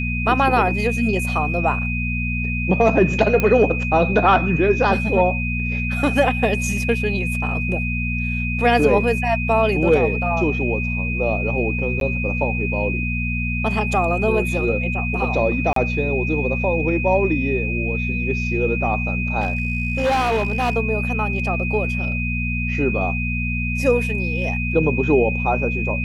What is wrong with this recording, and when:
mains hum 60 Hz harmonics 4 −24 dBFS
whistle 2,500 Hz −25 dBFS
0:03.40: click −7 dBFS
0:12.00–0:12.01: drop-out 12 ms
0:15.73–0:15.76: drop-out 33 ms
0:19.40–0:20.77: clipping −15.5 dBFS

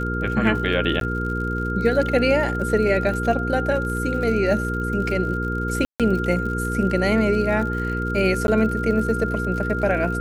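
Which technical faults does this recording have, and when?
surface crackle 65 per second −30 dBFS
mains hum 60 Hz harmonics 8 −26 dBFS
whistle 1,400 Hz −27 dBFS
0:01.00–0:01.01: drop-out
0:05.85–0:06.00: drop-out 147 ms
0:08.47–0:08.48: drop-out

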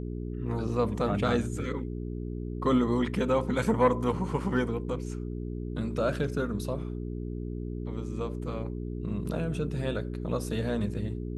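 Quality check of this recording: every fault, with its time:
mains hum 60 Hz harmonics 7 −35 dBFS

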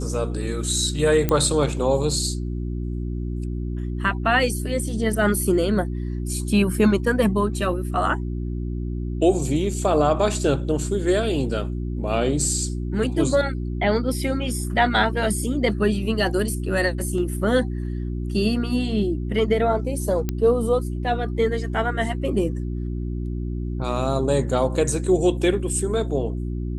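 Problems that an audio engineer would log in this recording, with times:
mains hum 60 Hz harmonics 6 −27 dBFS
0:01.29: click −7 dBFS
0:20.29: click −11 dBFS

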